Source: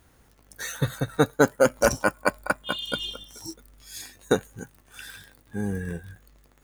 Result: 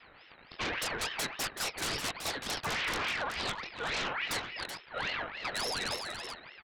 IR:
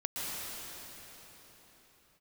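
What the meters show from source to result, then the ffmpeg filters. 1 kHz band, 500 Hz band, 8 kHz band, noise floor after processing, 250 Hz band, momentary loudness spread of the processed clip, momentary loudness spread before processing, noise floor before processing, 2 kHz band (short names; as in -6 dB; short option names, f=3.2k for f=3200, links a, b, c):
-5.5 dB, -15.5 dB, -3.5 dB, -57 dBFS, -15.5 dB, 7 LU, 21 LU, -60 dBFS, -3.5 dB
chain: -filter_complex "[0:a]afftfilt=real='real(if(lt(b,272),68*(eq(floor(b/68),0)*2+eq(floor(b/68),1)*3+eq(floor(b/68),2)*0+eq(floor(b/68),3)*1)+mod(b,68),b),0)':imag='imag(if(lt(b,272),68*(eq(floor(b/68),0)*2+eq(floor(b/68),1)*3+eq(floor(b/68),2)*0+eq(floor(b/68),3)*1)+mod(b,68),b),0)':win_size=2048:overlap=0.75,equalizer=f=160:w=2.1:g=-9.5,flanger=delay=19.5:depth=4.8:speed=0.57,asplit=2[a][b];[b]aecho=0:1:1132:0.112[c];[a][c]amix=inputs=2:normalize=0,adynamicsmooth=sensitivity=6.5:basefreq=1.4k,highpass=92,highpass=f=250:t=q:w=0.5412,highpass=f=250:t=q:w=1.307,lowpass=f=2.2k:t=q:w=0.5176,lowpass=f=2.2k:t=q:w=0.7071,lowpass=f=2.2k:t=q:w=1.932,afreqshift=-180,acrossover=split=170|1300[d][e][f];[d]acompressor=threshold=-52dB:ratio=4[g];[e]acompressor=threshold=-57dB:ratio=4[h];[f]acompressor=threshold=-54dB:ratio=4[i];[g][h][i]amix=inputs=3:normalize=0,aeval=exprs='0.015*sin(PI/2*6.31*val(0)/0.015)':c=same,asplit=2[j][k];[k]aecho=0:1:379:0.422[l];[j][l]amix=inputs=2:normalize=0,aeval=exprs='val(0)*sin(2*PI*1700*n/s+1700*0.45/3.5*sin(2*PI*3.5*n/s))':c=same,volume=9dB"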